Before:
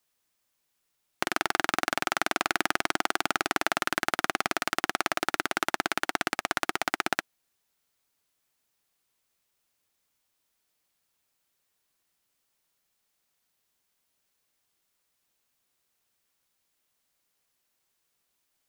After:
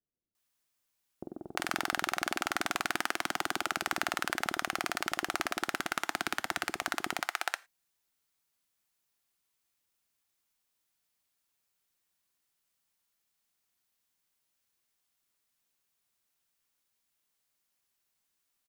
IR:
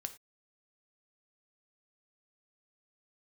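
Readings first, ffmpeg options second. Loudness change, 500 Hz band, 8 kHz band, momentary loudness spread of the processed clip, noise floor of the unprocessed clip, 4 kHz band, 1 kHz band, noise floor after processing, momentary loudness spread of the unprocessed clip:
−5.0 dB, −7.0 dB, −3.5 dB, 4 LU, −78 dBFS, −4.0 dB, −5.0 dB, −81 dBFS, 2 LU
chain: -filter_complex "[0:a]acrossover=split=500[link_01][link_02];[link_02]adelay=350[link_03];[link_01][link_03]amix=inputs=2:normalize=0,asplit=2[link_04][link_05];[1:a]atrim=start_sample=2205,highshelf=frequency=5300:gain=5.5[link_06];[link_05][link_06]afir=irnorm=-1:irlink=0,volume=-4dB[link_07];[link_04][link_07]amix=inputs=2:normalize=0,volume=-8dB"

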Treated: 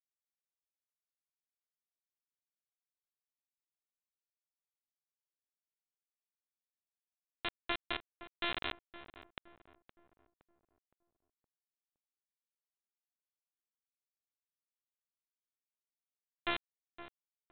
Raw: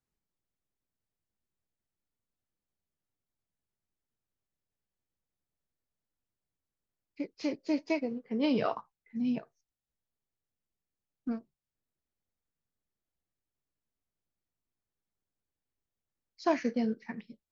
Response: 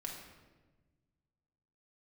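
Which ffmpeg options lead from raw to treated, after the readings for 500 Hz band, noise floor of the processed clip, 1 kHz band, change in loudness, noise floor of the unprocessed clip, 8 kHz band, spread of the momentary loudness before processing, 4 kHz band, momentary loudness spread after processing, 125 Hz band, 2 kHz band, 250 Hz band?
−14.5 dB, below −85 dBFS, −5.5 dB, −6.5 dB, below −85 dBFS, can't be measured, 13 LU, +4.5 dB, 17 LU, −11.5 dB, +2.0 dB, −20.5 dB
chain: -filter_complex "[0:a]highpass=79,aemphasis=mode=production:type=riaa,acrossover=split=290|2200[link_01][link_02][link_03];[link_02]alimiter=level_in=3dB:limit=-24dB:level=0:latency=1:release=79,volume=-3dB[link_04];[link_01][link_04][link_03]amix=inputs=3:normalize=0,asoftclip=type=tanh:threshold=-39dB,afftfilt=real='hypot(re,im)*cos(PI*b)':imag='0':win_size=512:overlap=0.75,aresample=8000,acrusher=bits=5:mix=0:aa=0.000001,aresample=44100,asplit=2[link_05][link_06];[link_06]adelay=516,lowpass=frequency=1300:poles=1,volume=-12.5dB,asplit=2[link_07][link_08];[link_08]adelay=516,lowpass=frequency=1300:poles=1,volume=0.46,asplit=2[link_09][link_10];[link_10]adelay=516,lowpass=frequency=1300:poles=1,volume=0.46,asplit=2[link_11][link_12];[link_12]adelay=516,lowpass=frequency=1300:poles=1,volume=0.46,asplit=2[link_13][link_14];[link_14]adelay=516,lowpass=frequency=1300:poles=1,volume=0.46[link_15];[link_05][link_07][link_09][link_11][link_13][link_15]amix=inputs=6:normalize=0,volume=9dB"

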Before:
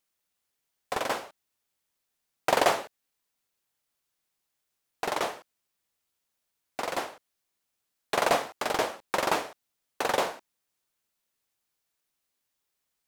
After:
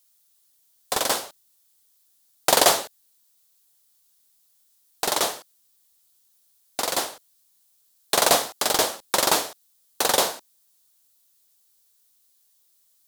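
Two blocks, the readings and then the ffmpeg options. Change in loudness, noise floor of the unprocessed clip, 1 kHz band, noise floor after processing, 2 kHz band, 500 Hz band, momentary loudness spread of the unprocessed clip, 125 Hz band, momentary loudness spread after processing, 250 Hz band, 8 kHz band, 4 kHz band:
+7.0 dB, −82 dBFS, +3.5 dB, −64 dBFS, +3.5 dB, +3.5 dB, 16 LU, +3.5 dB, 17 LU, +3.5 dB, +16.0 dB, +11.5 dB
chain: -af "aexciter=amount=3.2:drive=6.1:freq=3400,volume=3.5dB"

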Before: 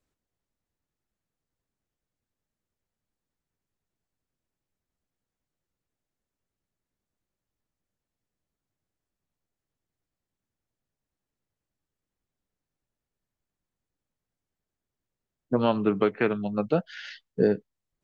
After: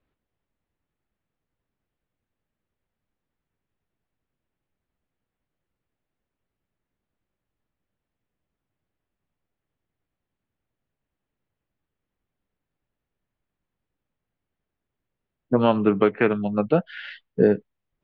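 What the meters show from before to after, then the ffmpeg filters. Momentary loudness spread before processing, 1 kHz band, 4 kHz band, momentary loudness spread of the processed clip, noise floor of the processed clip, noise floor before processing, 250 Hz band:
13 LU, +4.5 dB, +2.0 dB, 13 LU, −85 dBFS, below −85 dBFS, +4.5 dB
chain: -af "lowpass=frequency=3300:width=0.5412,lowpass=frequency=3300:width=1.3066,volume=4.5dB"

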